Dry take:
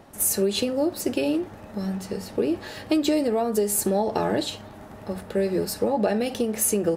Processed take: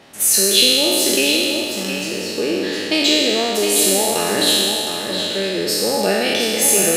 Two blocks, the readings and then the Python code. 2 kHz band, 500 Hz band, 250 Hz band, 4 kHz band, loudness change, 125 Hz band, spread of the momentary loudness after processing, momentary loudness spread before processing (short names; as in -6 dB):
+15.5 dB, +5.0 dB, +3.0 dB, +19.5 dB, +9.0 dB, +0.5 dB, 9 LU, 10 LU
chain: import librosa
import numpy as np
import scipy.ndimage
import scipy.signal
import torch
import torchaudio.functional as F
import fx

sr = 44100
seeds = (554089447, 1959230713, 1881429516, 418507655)

y = fx.spec_trails(x, sr, decay_s=2.29)
y = fx.weighting(y, sr, curve='D')
y = y + 10.0 ** (-7.0 / 20.0) * np.pad(y, (int(712 * sr / 1000.0), 0))[:len(y)]